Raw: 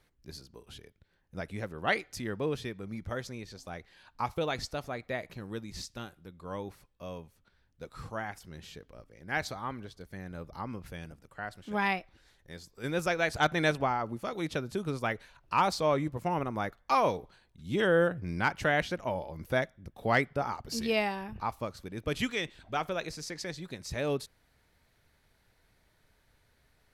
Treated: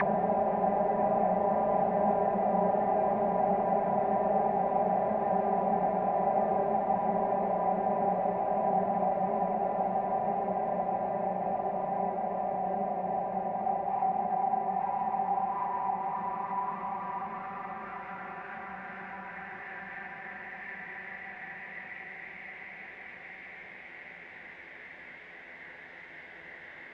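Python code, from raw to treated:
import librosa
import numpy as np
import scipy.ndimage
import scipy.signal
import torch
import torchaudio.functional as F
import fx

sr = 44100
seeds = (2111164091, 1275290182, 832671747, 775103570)

y = fx.local_reverse(x, sr, ms=34.0)
y = fx.quant_dither(y, sr, seeds[0], bits=6, dither='none')
y = fx.paulstretch(y, sr, seeds[1], factor=44.0, window_s=1.0, from_s=11.8)
y = fx.envelope_lowpass(y, sr, base_hz=660.0, top_hz=2600.0, q=5.8, full_db=-33.0, direction='down')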